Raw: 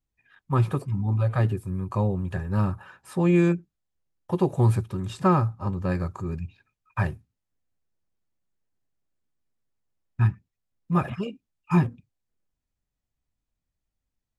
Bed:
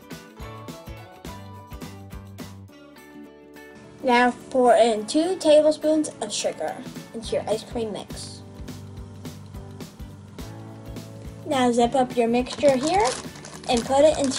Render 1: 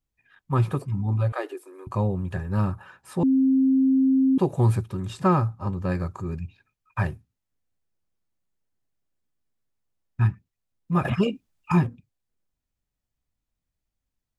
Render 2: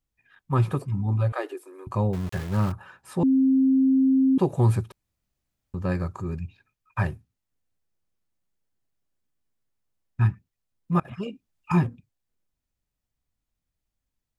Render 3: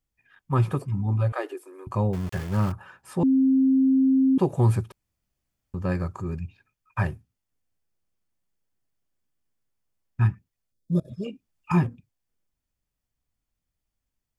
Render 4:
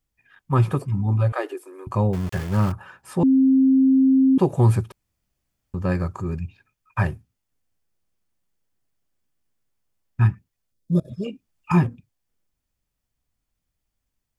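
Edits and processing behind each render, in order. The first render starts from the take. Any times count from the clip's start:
0:01.32–0:01.87: linear-phase brick-wall high-pass 290 Hz; 0:03.23–0:04.38: beep over 265 Hz −16 dBFS; 0:11.05–0:11.72: clip gain +8.5 dB
0:02.13–0:02.72: centre clipping without the shift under −34 dBFS; 0:04.92–0:05.74: fill with room tone; 0:11.00–0:11.87: fade in, from −24 dB
0:10.72–0:11.24: gain on a spectral selection 650–3,300 Hz −26 dB; notch filter 3,900 Hz, Q 14
level +3.5 dB

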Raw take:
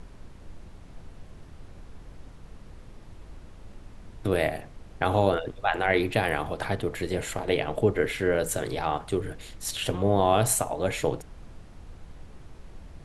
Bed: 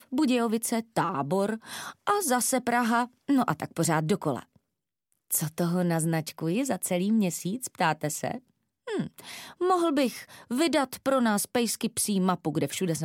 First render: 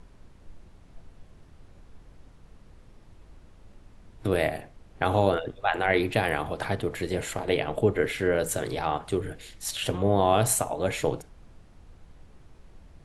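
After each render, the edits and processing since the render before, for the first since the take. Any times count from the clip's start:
noise reduction from a noise print 6 dB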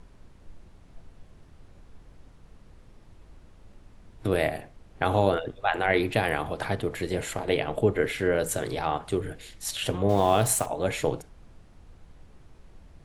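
0:10.09–0:10.66: centre clipping without the shift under −36.5 dBFS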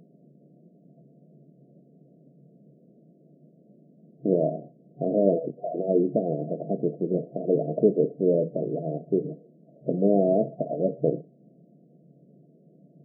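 brick-wall band-pass 130–720 Hz
low-shelf EQ 340 Hz +8 dB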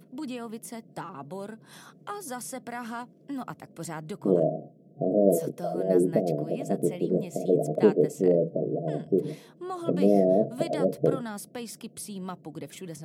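mix in bed −11.5 dB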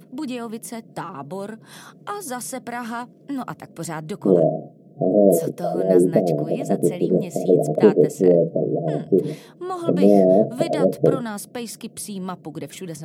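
level +7 dB
brickwall limiter −2 dBFS, peak gain reduction 1.5 dB

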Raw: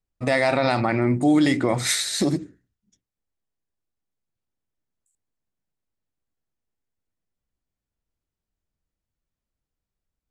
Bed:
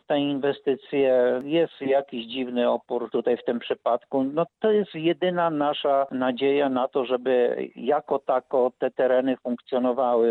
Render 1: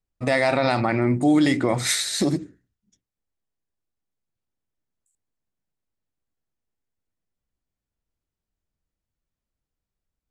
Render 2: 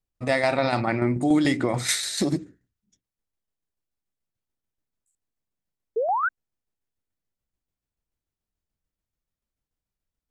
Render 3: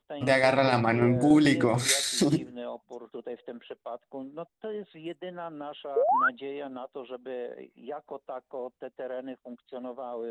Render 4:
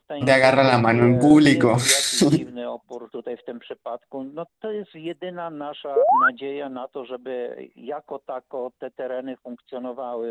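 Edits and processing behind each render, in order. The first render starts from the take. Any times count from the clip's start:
no processing that can be heard
0:05.96–0:06.29: sound drawn into the spectrogram rise 420–1,600 Hz −21 dBFS; shaped tremolo saw down 6.9 Hz, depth 50%
mix in bed −15.5 dB
level +7 dB

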